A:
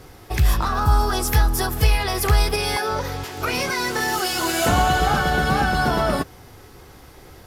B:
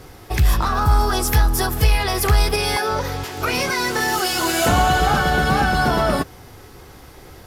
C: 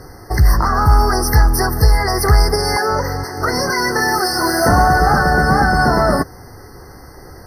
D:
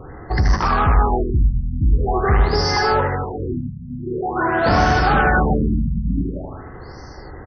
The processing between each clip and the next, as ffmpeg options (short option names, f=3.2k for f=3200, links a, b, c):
-af "acontrast=53,volume=-3.5dB"
-af "afftfilt=real='re*eq(mod(floor(b*sr/1024/2100),2),0)':imag='im*eq(mod(floor(b*sr/1024/2100),2),0)':win_size=1024:overlap=0.75,volume=4.5dB"
-filter_complex "[0:a]asoftclip=type=tanh:threshold=-11.5dB,asplit=2[a][b];[b]aecho=0:1:78|156|234|312|390|468|546|624:0.562|0.326|0.189|0.11|0.0636|0.0369|0.0214|0.0124[c];[a][c]amix=inputs=2:normalize=0,afftfilt=real='re*lt(b*sr/1024,240*pow(6400/240,0.5+0.5*sin(2*PI*0.46*pts/sr)))':imag='im*lt(b*sr/1024,240*pow(6400/240,0.5+0.5*sin(2*PI*0.46*pts/sr)))':win_size=1024:overlap=0.75"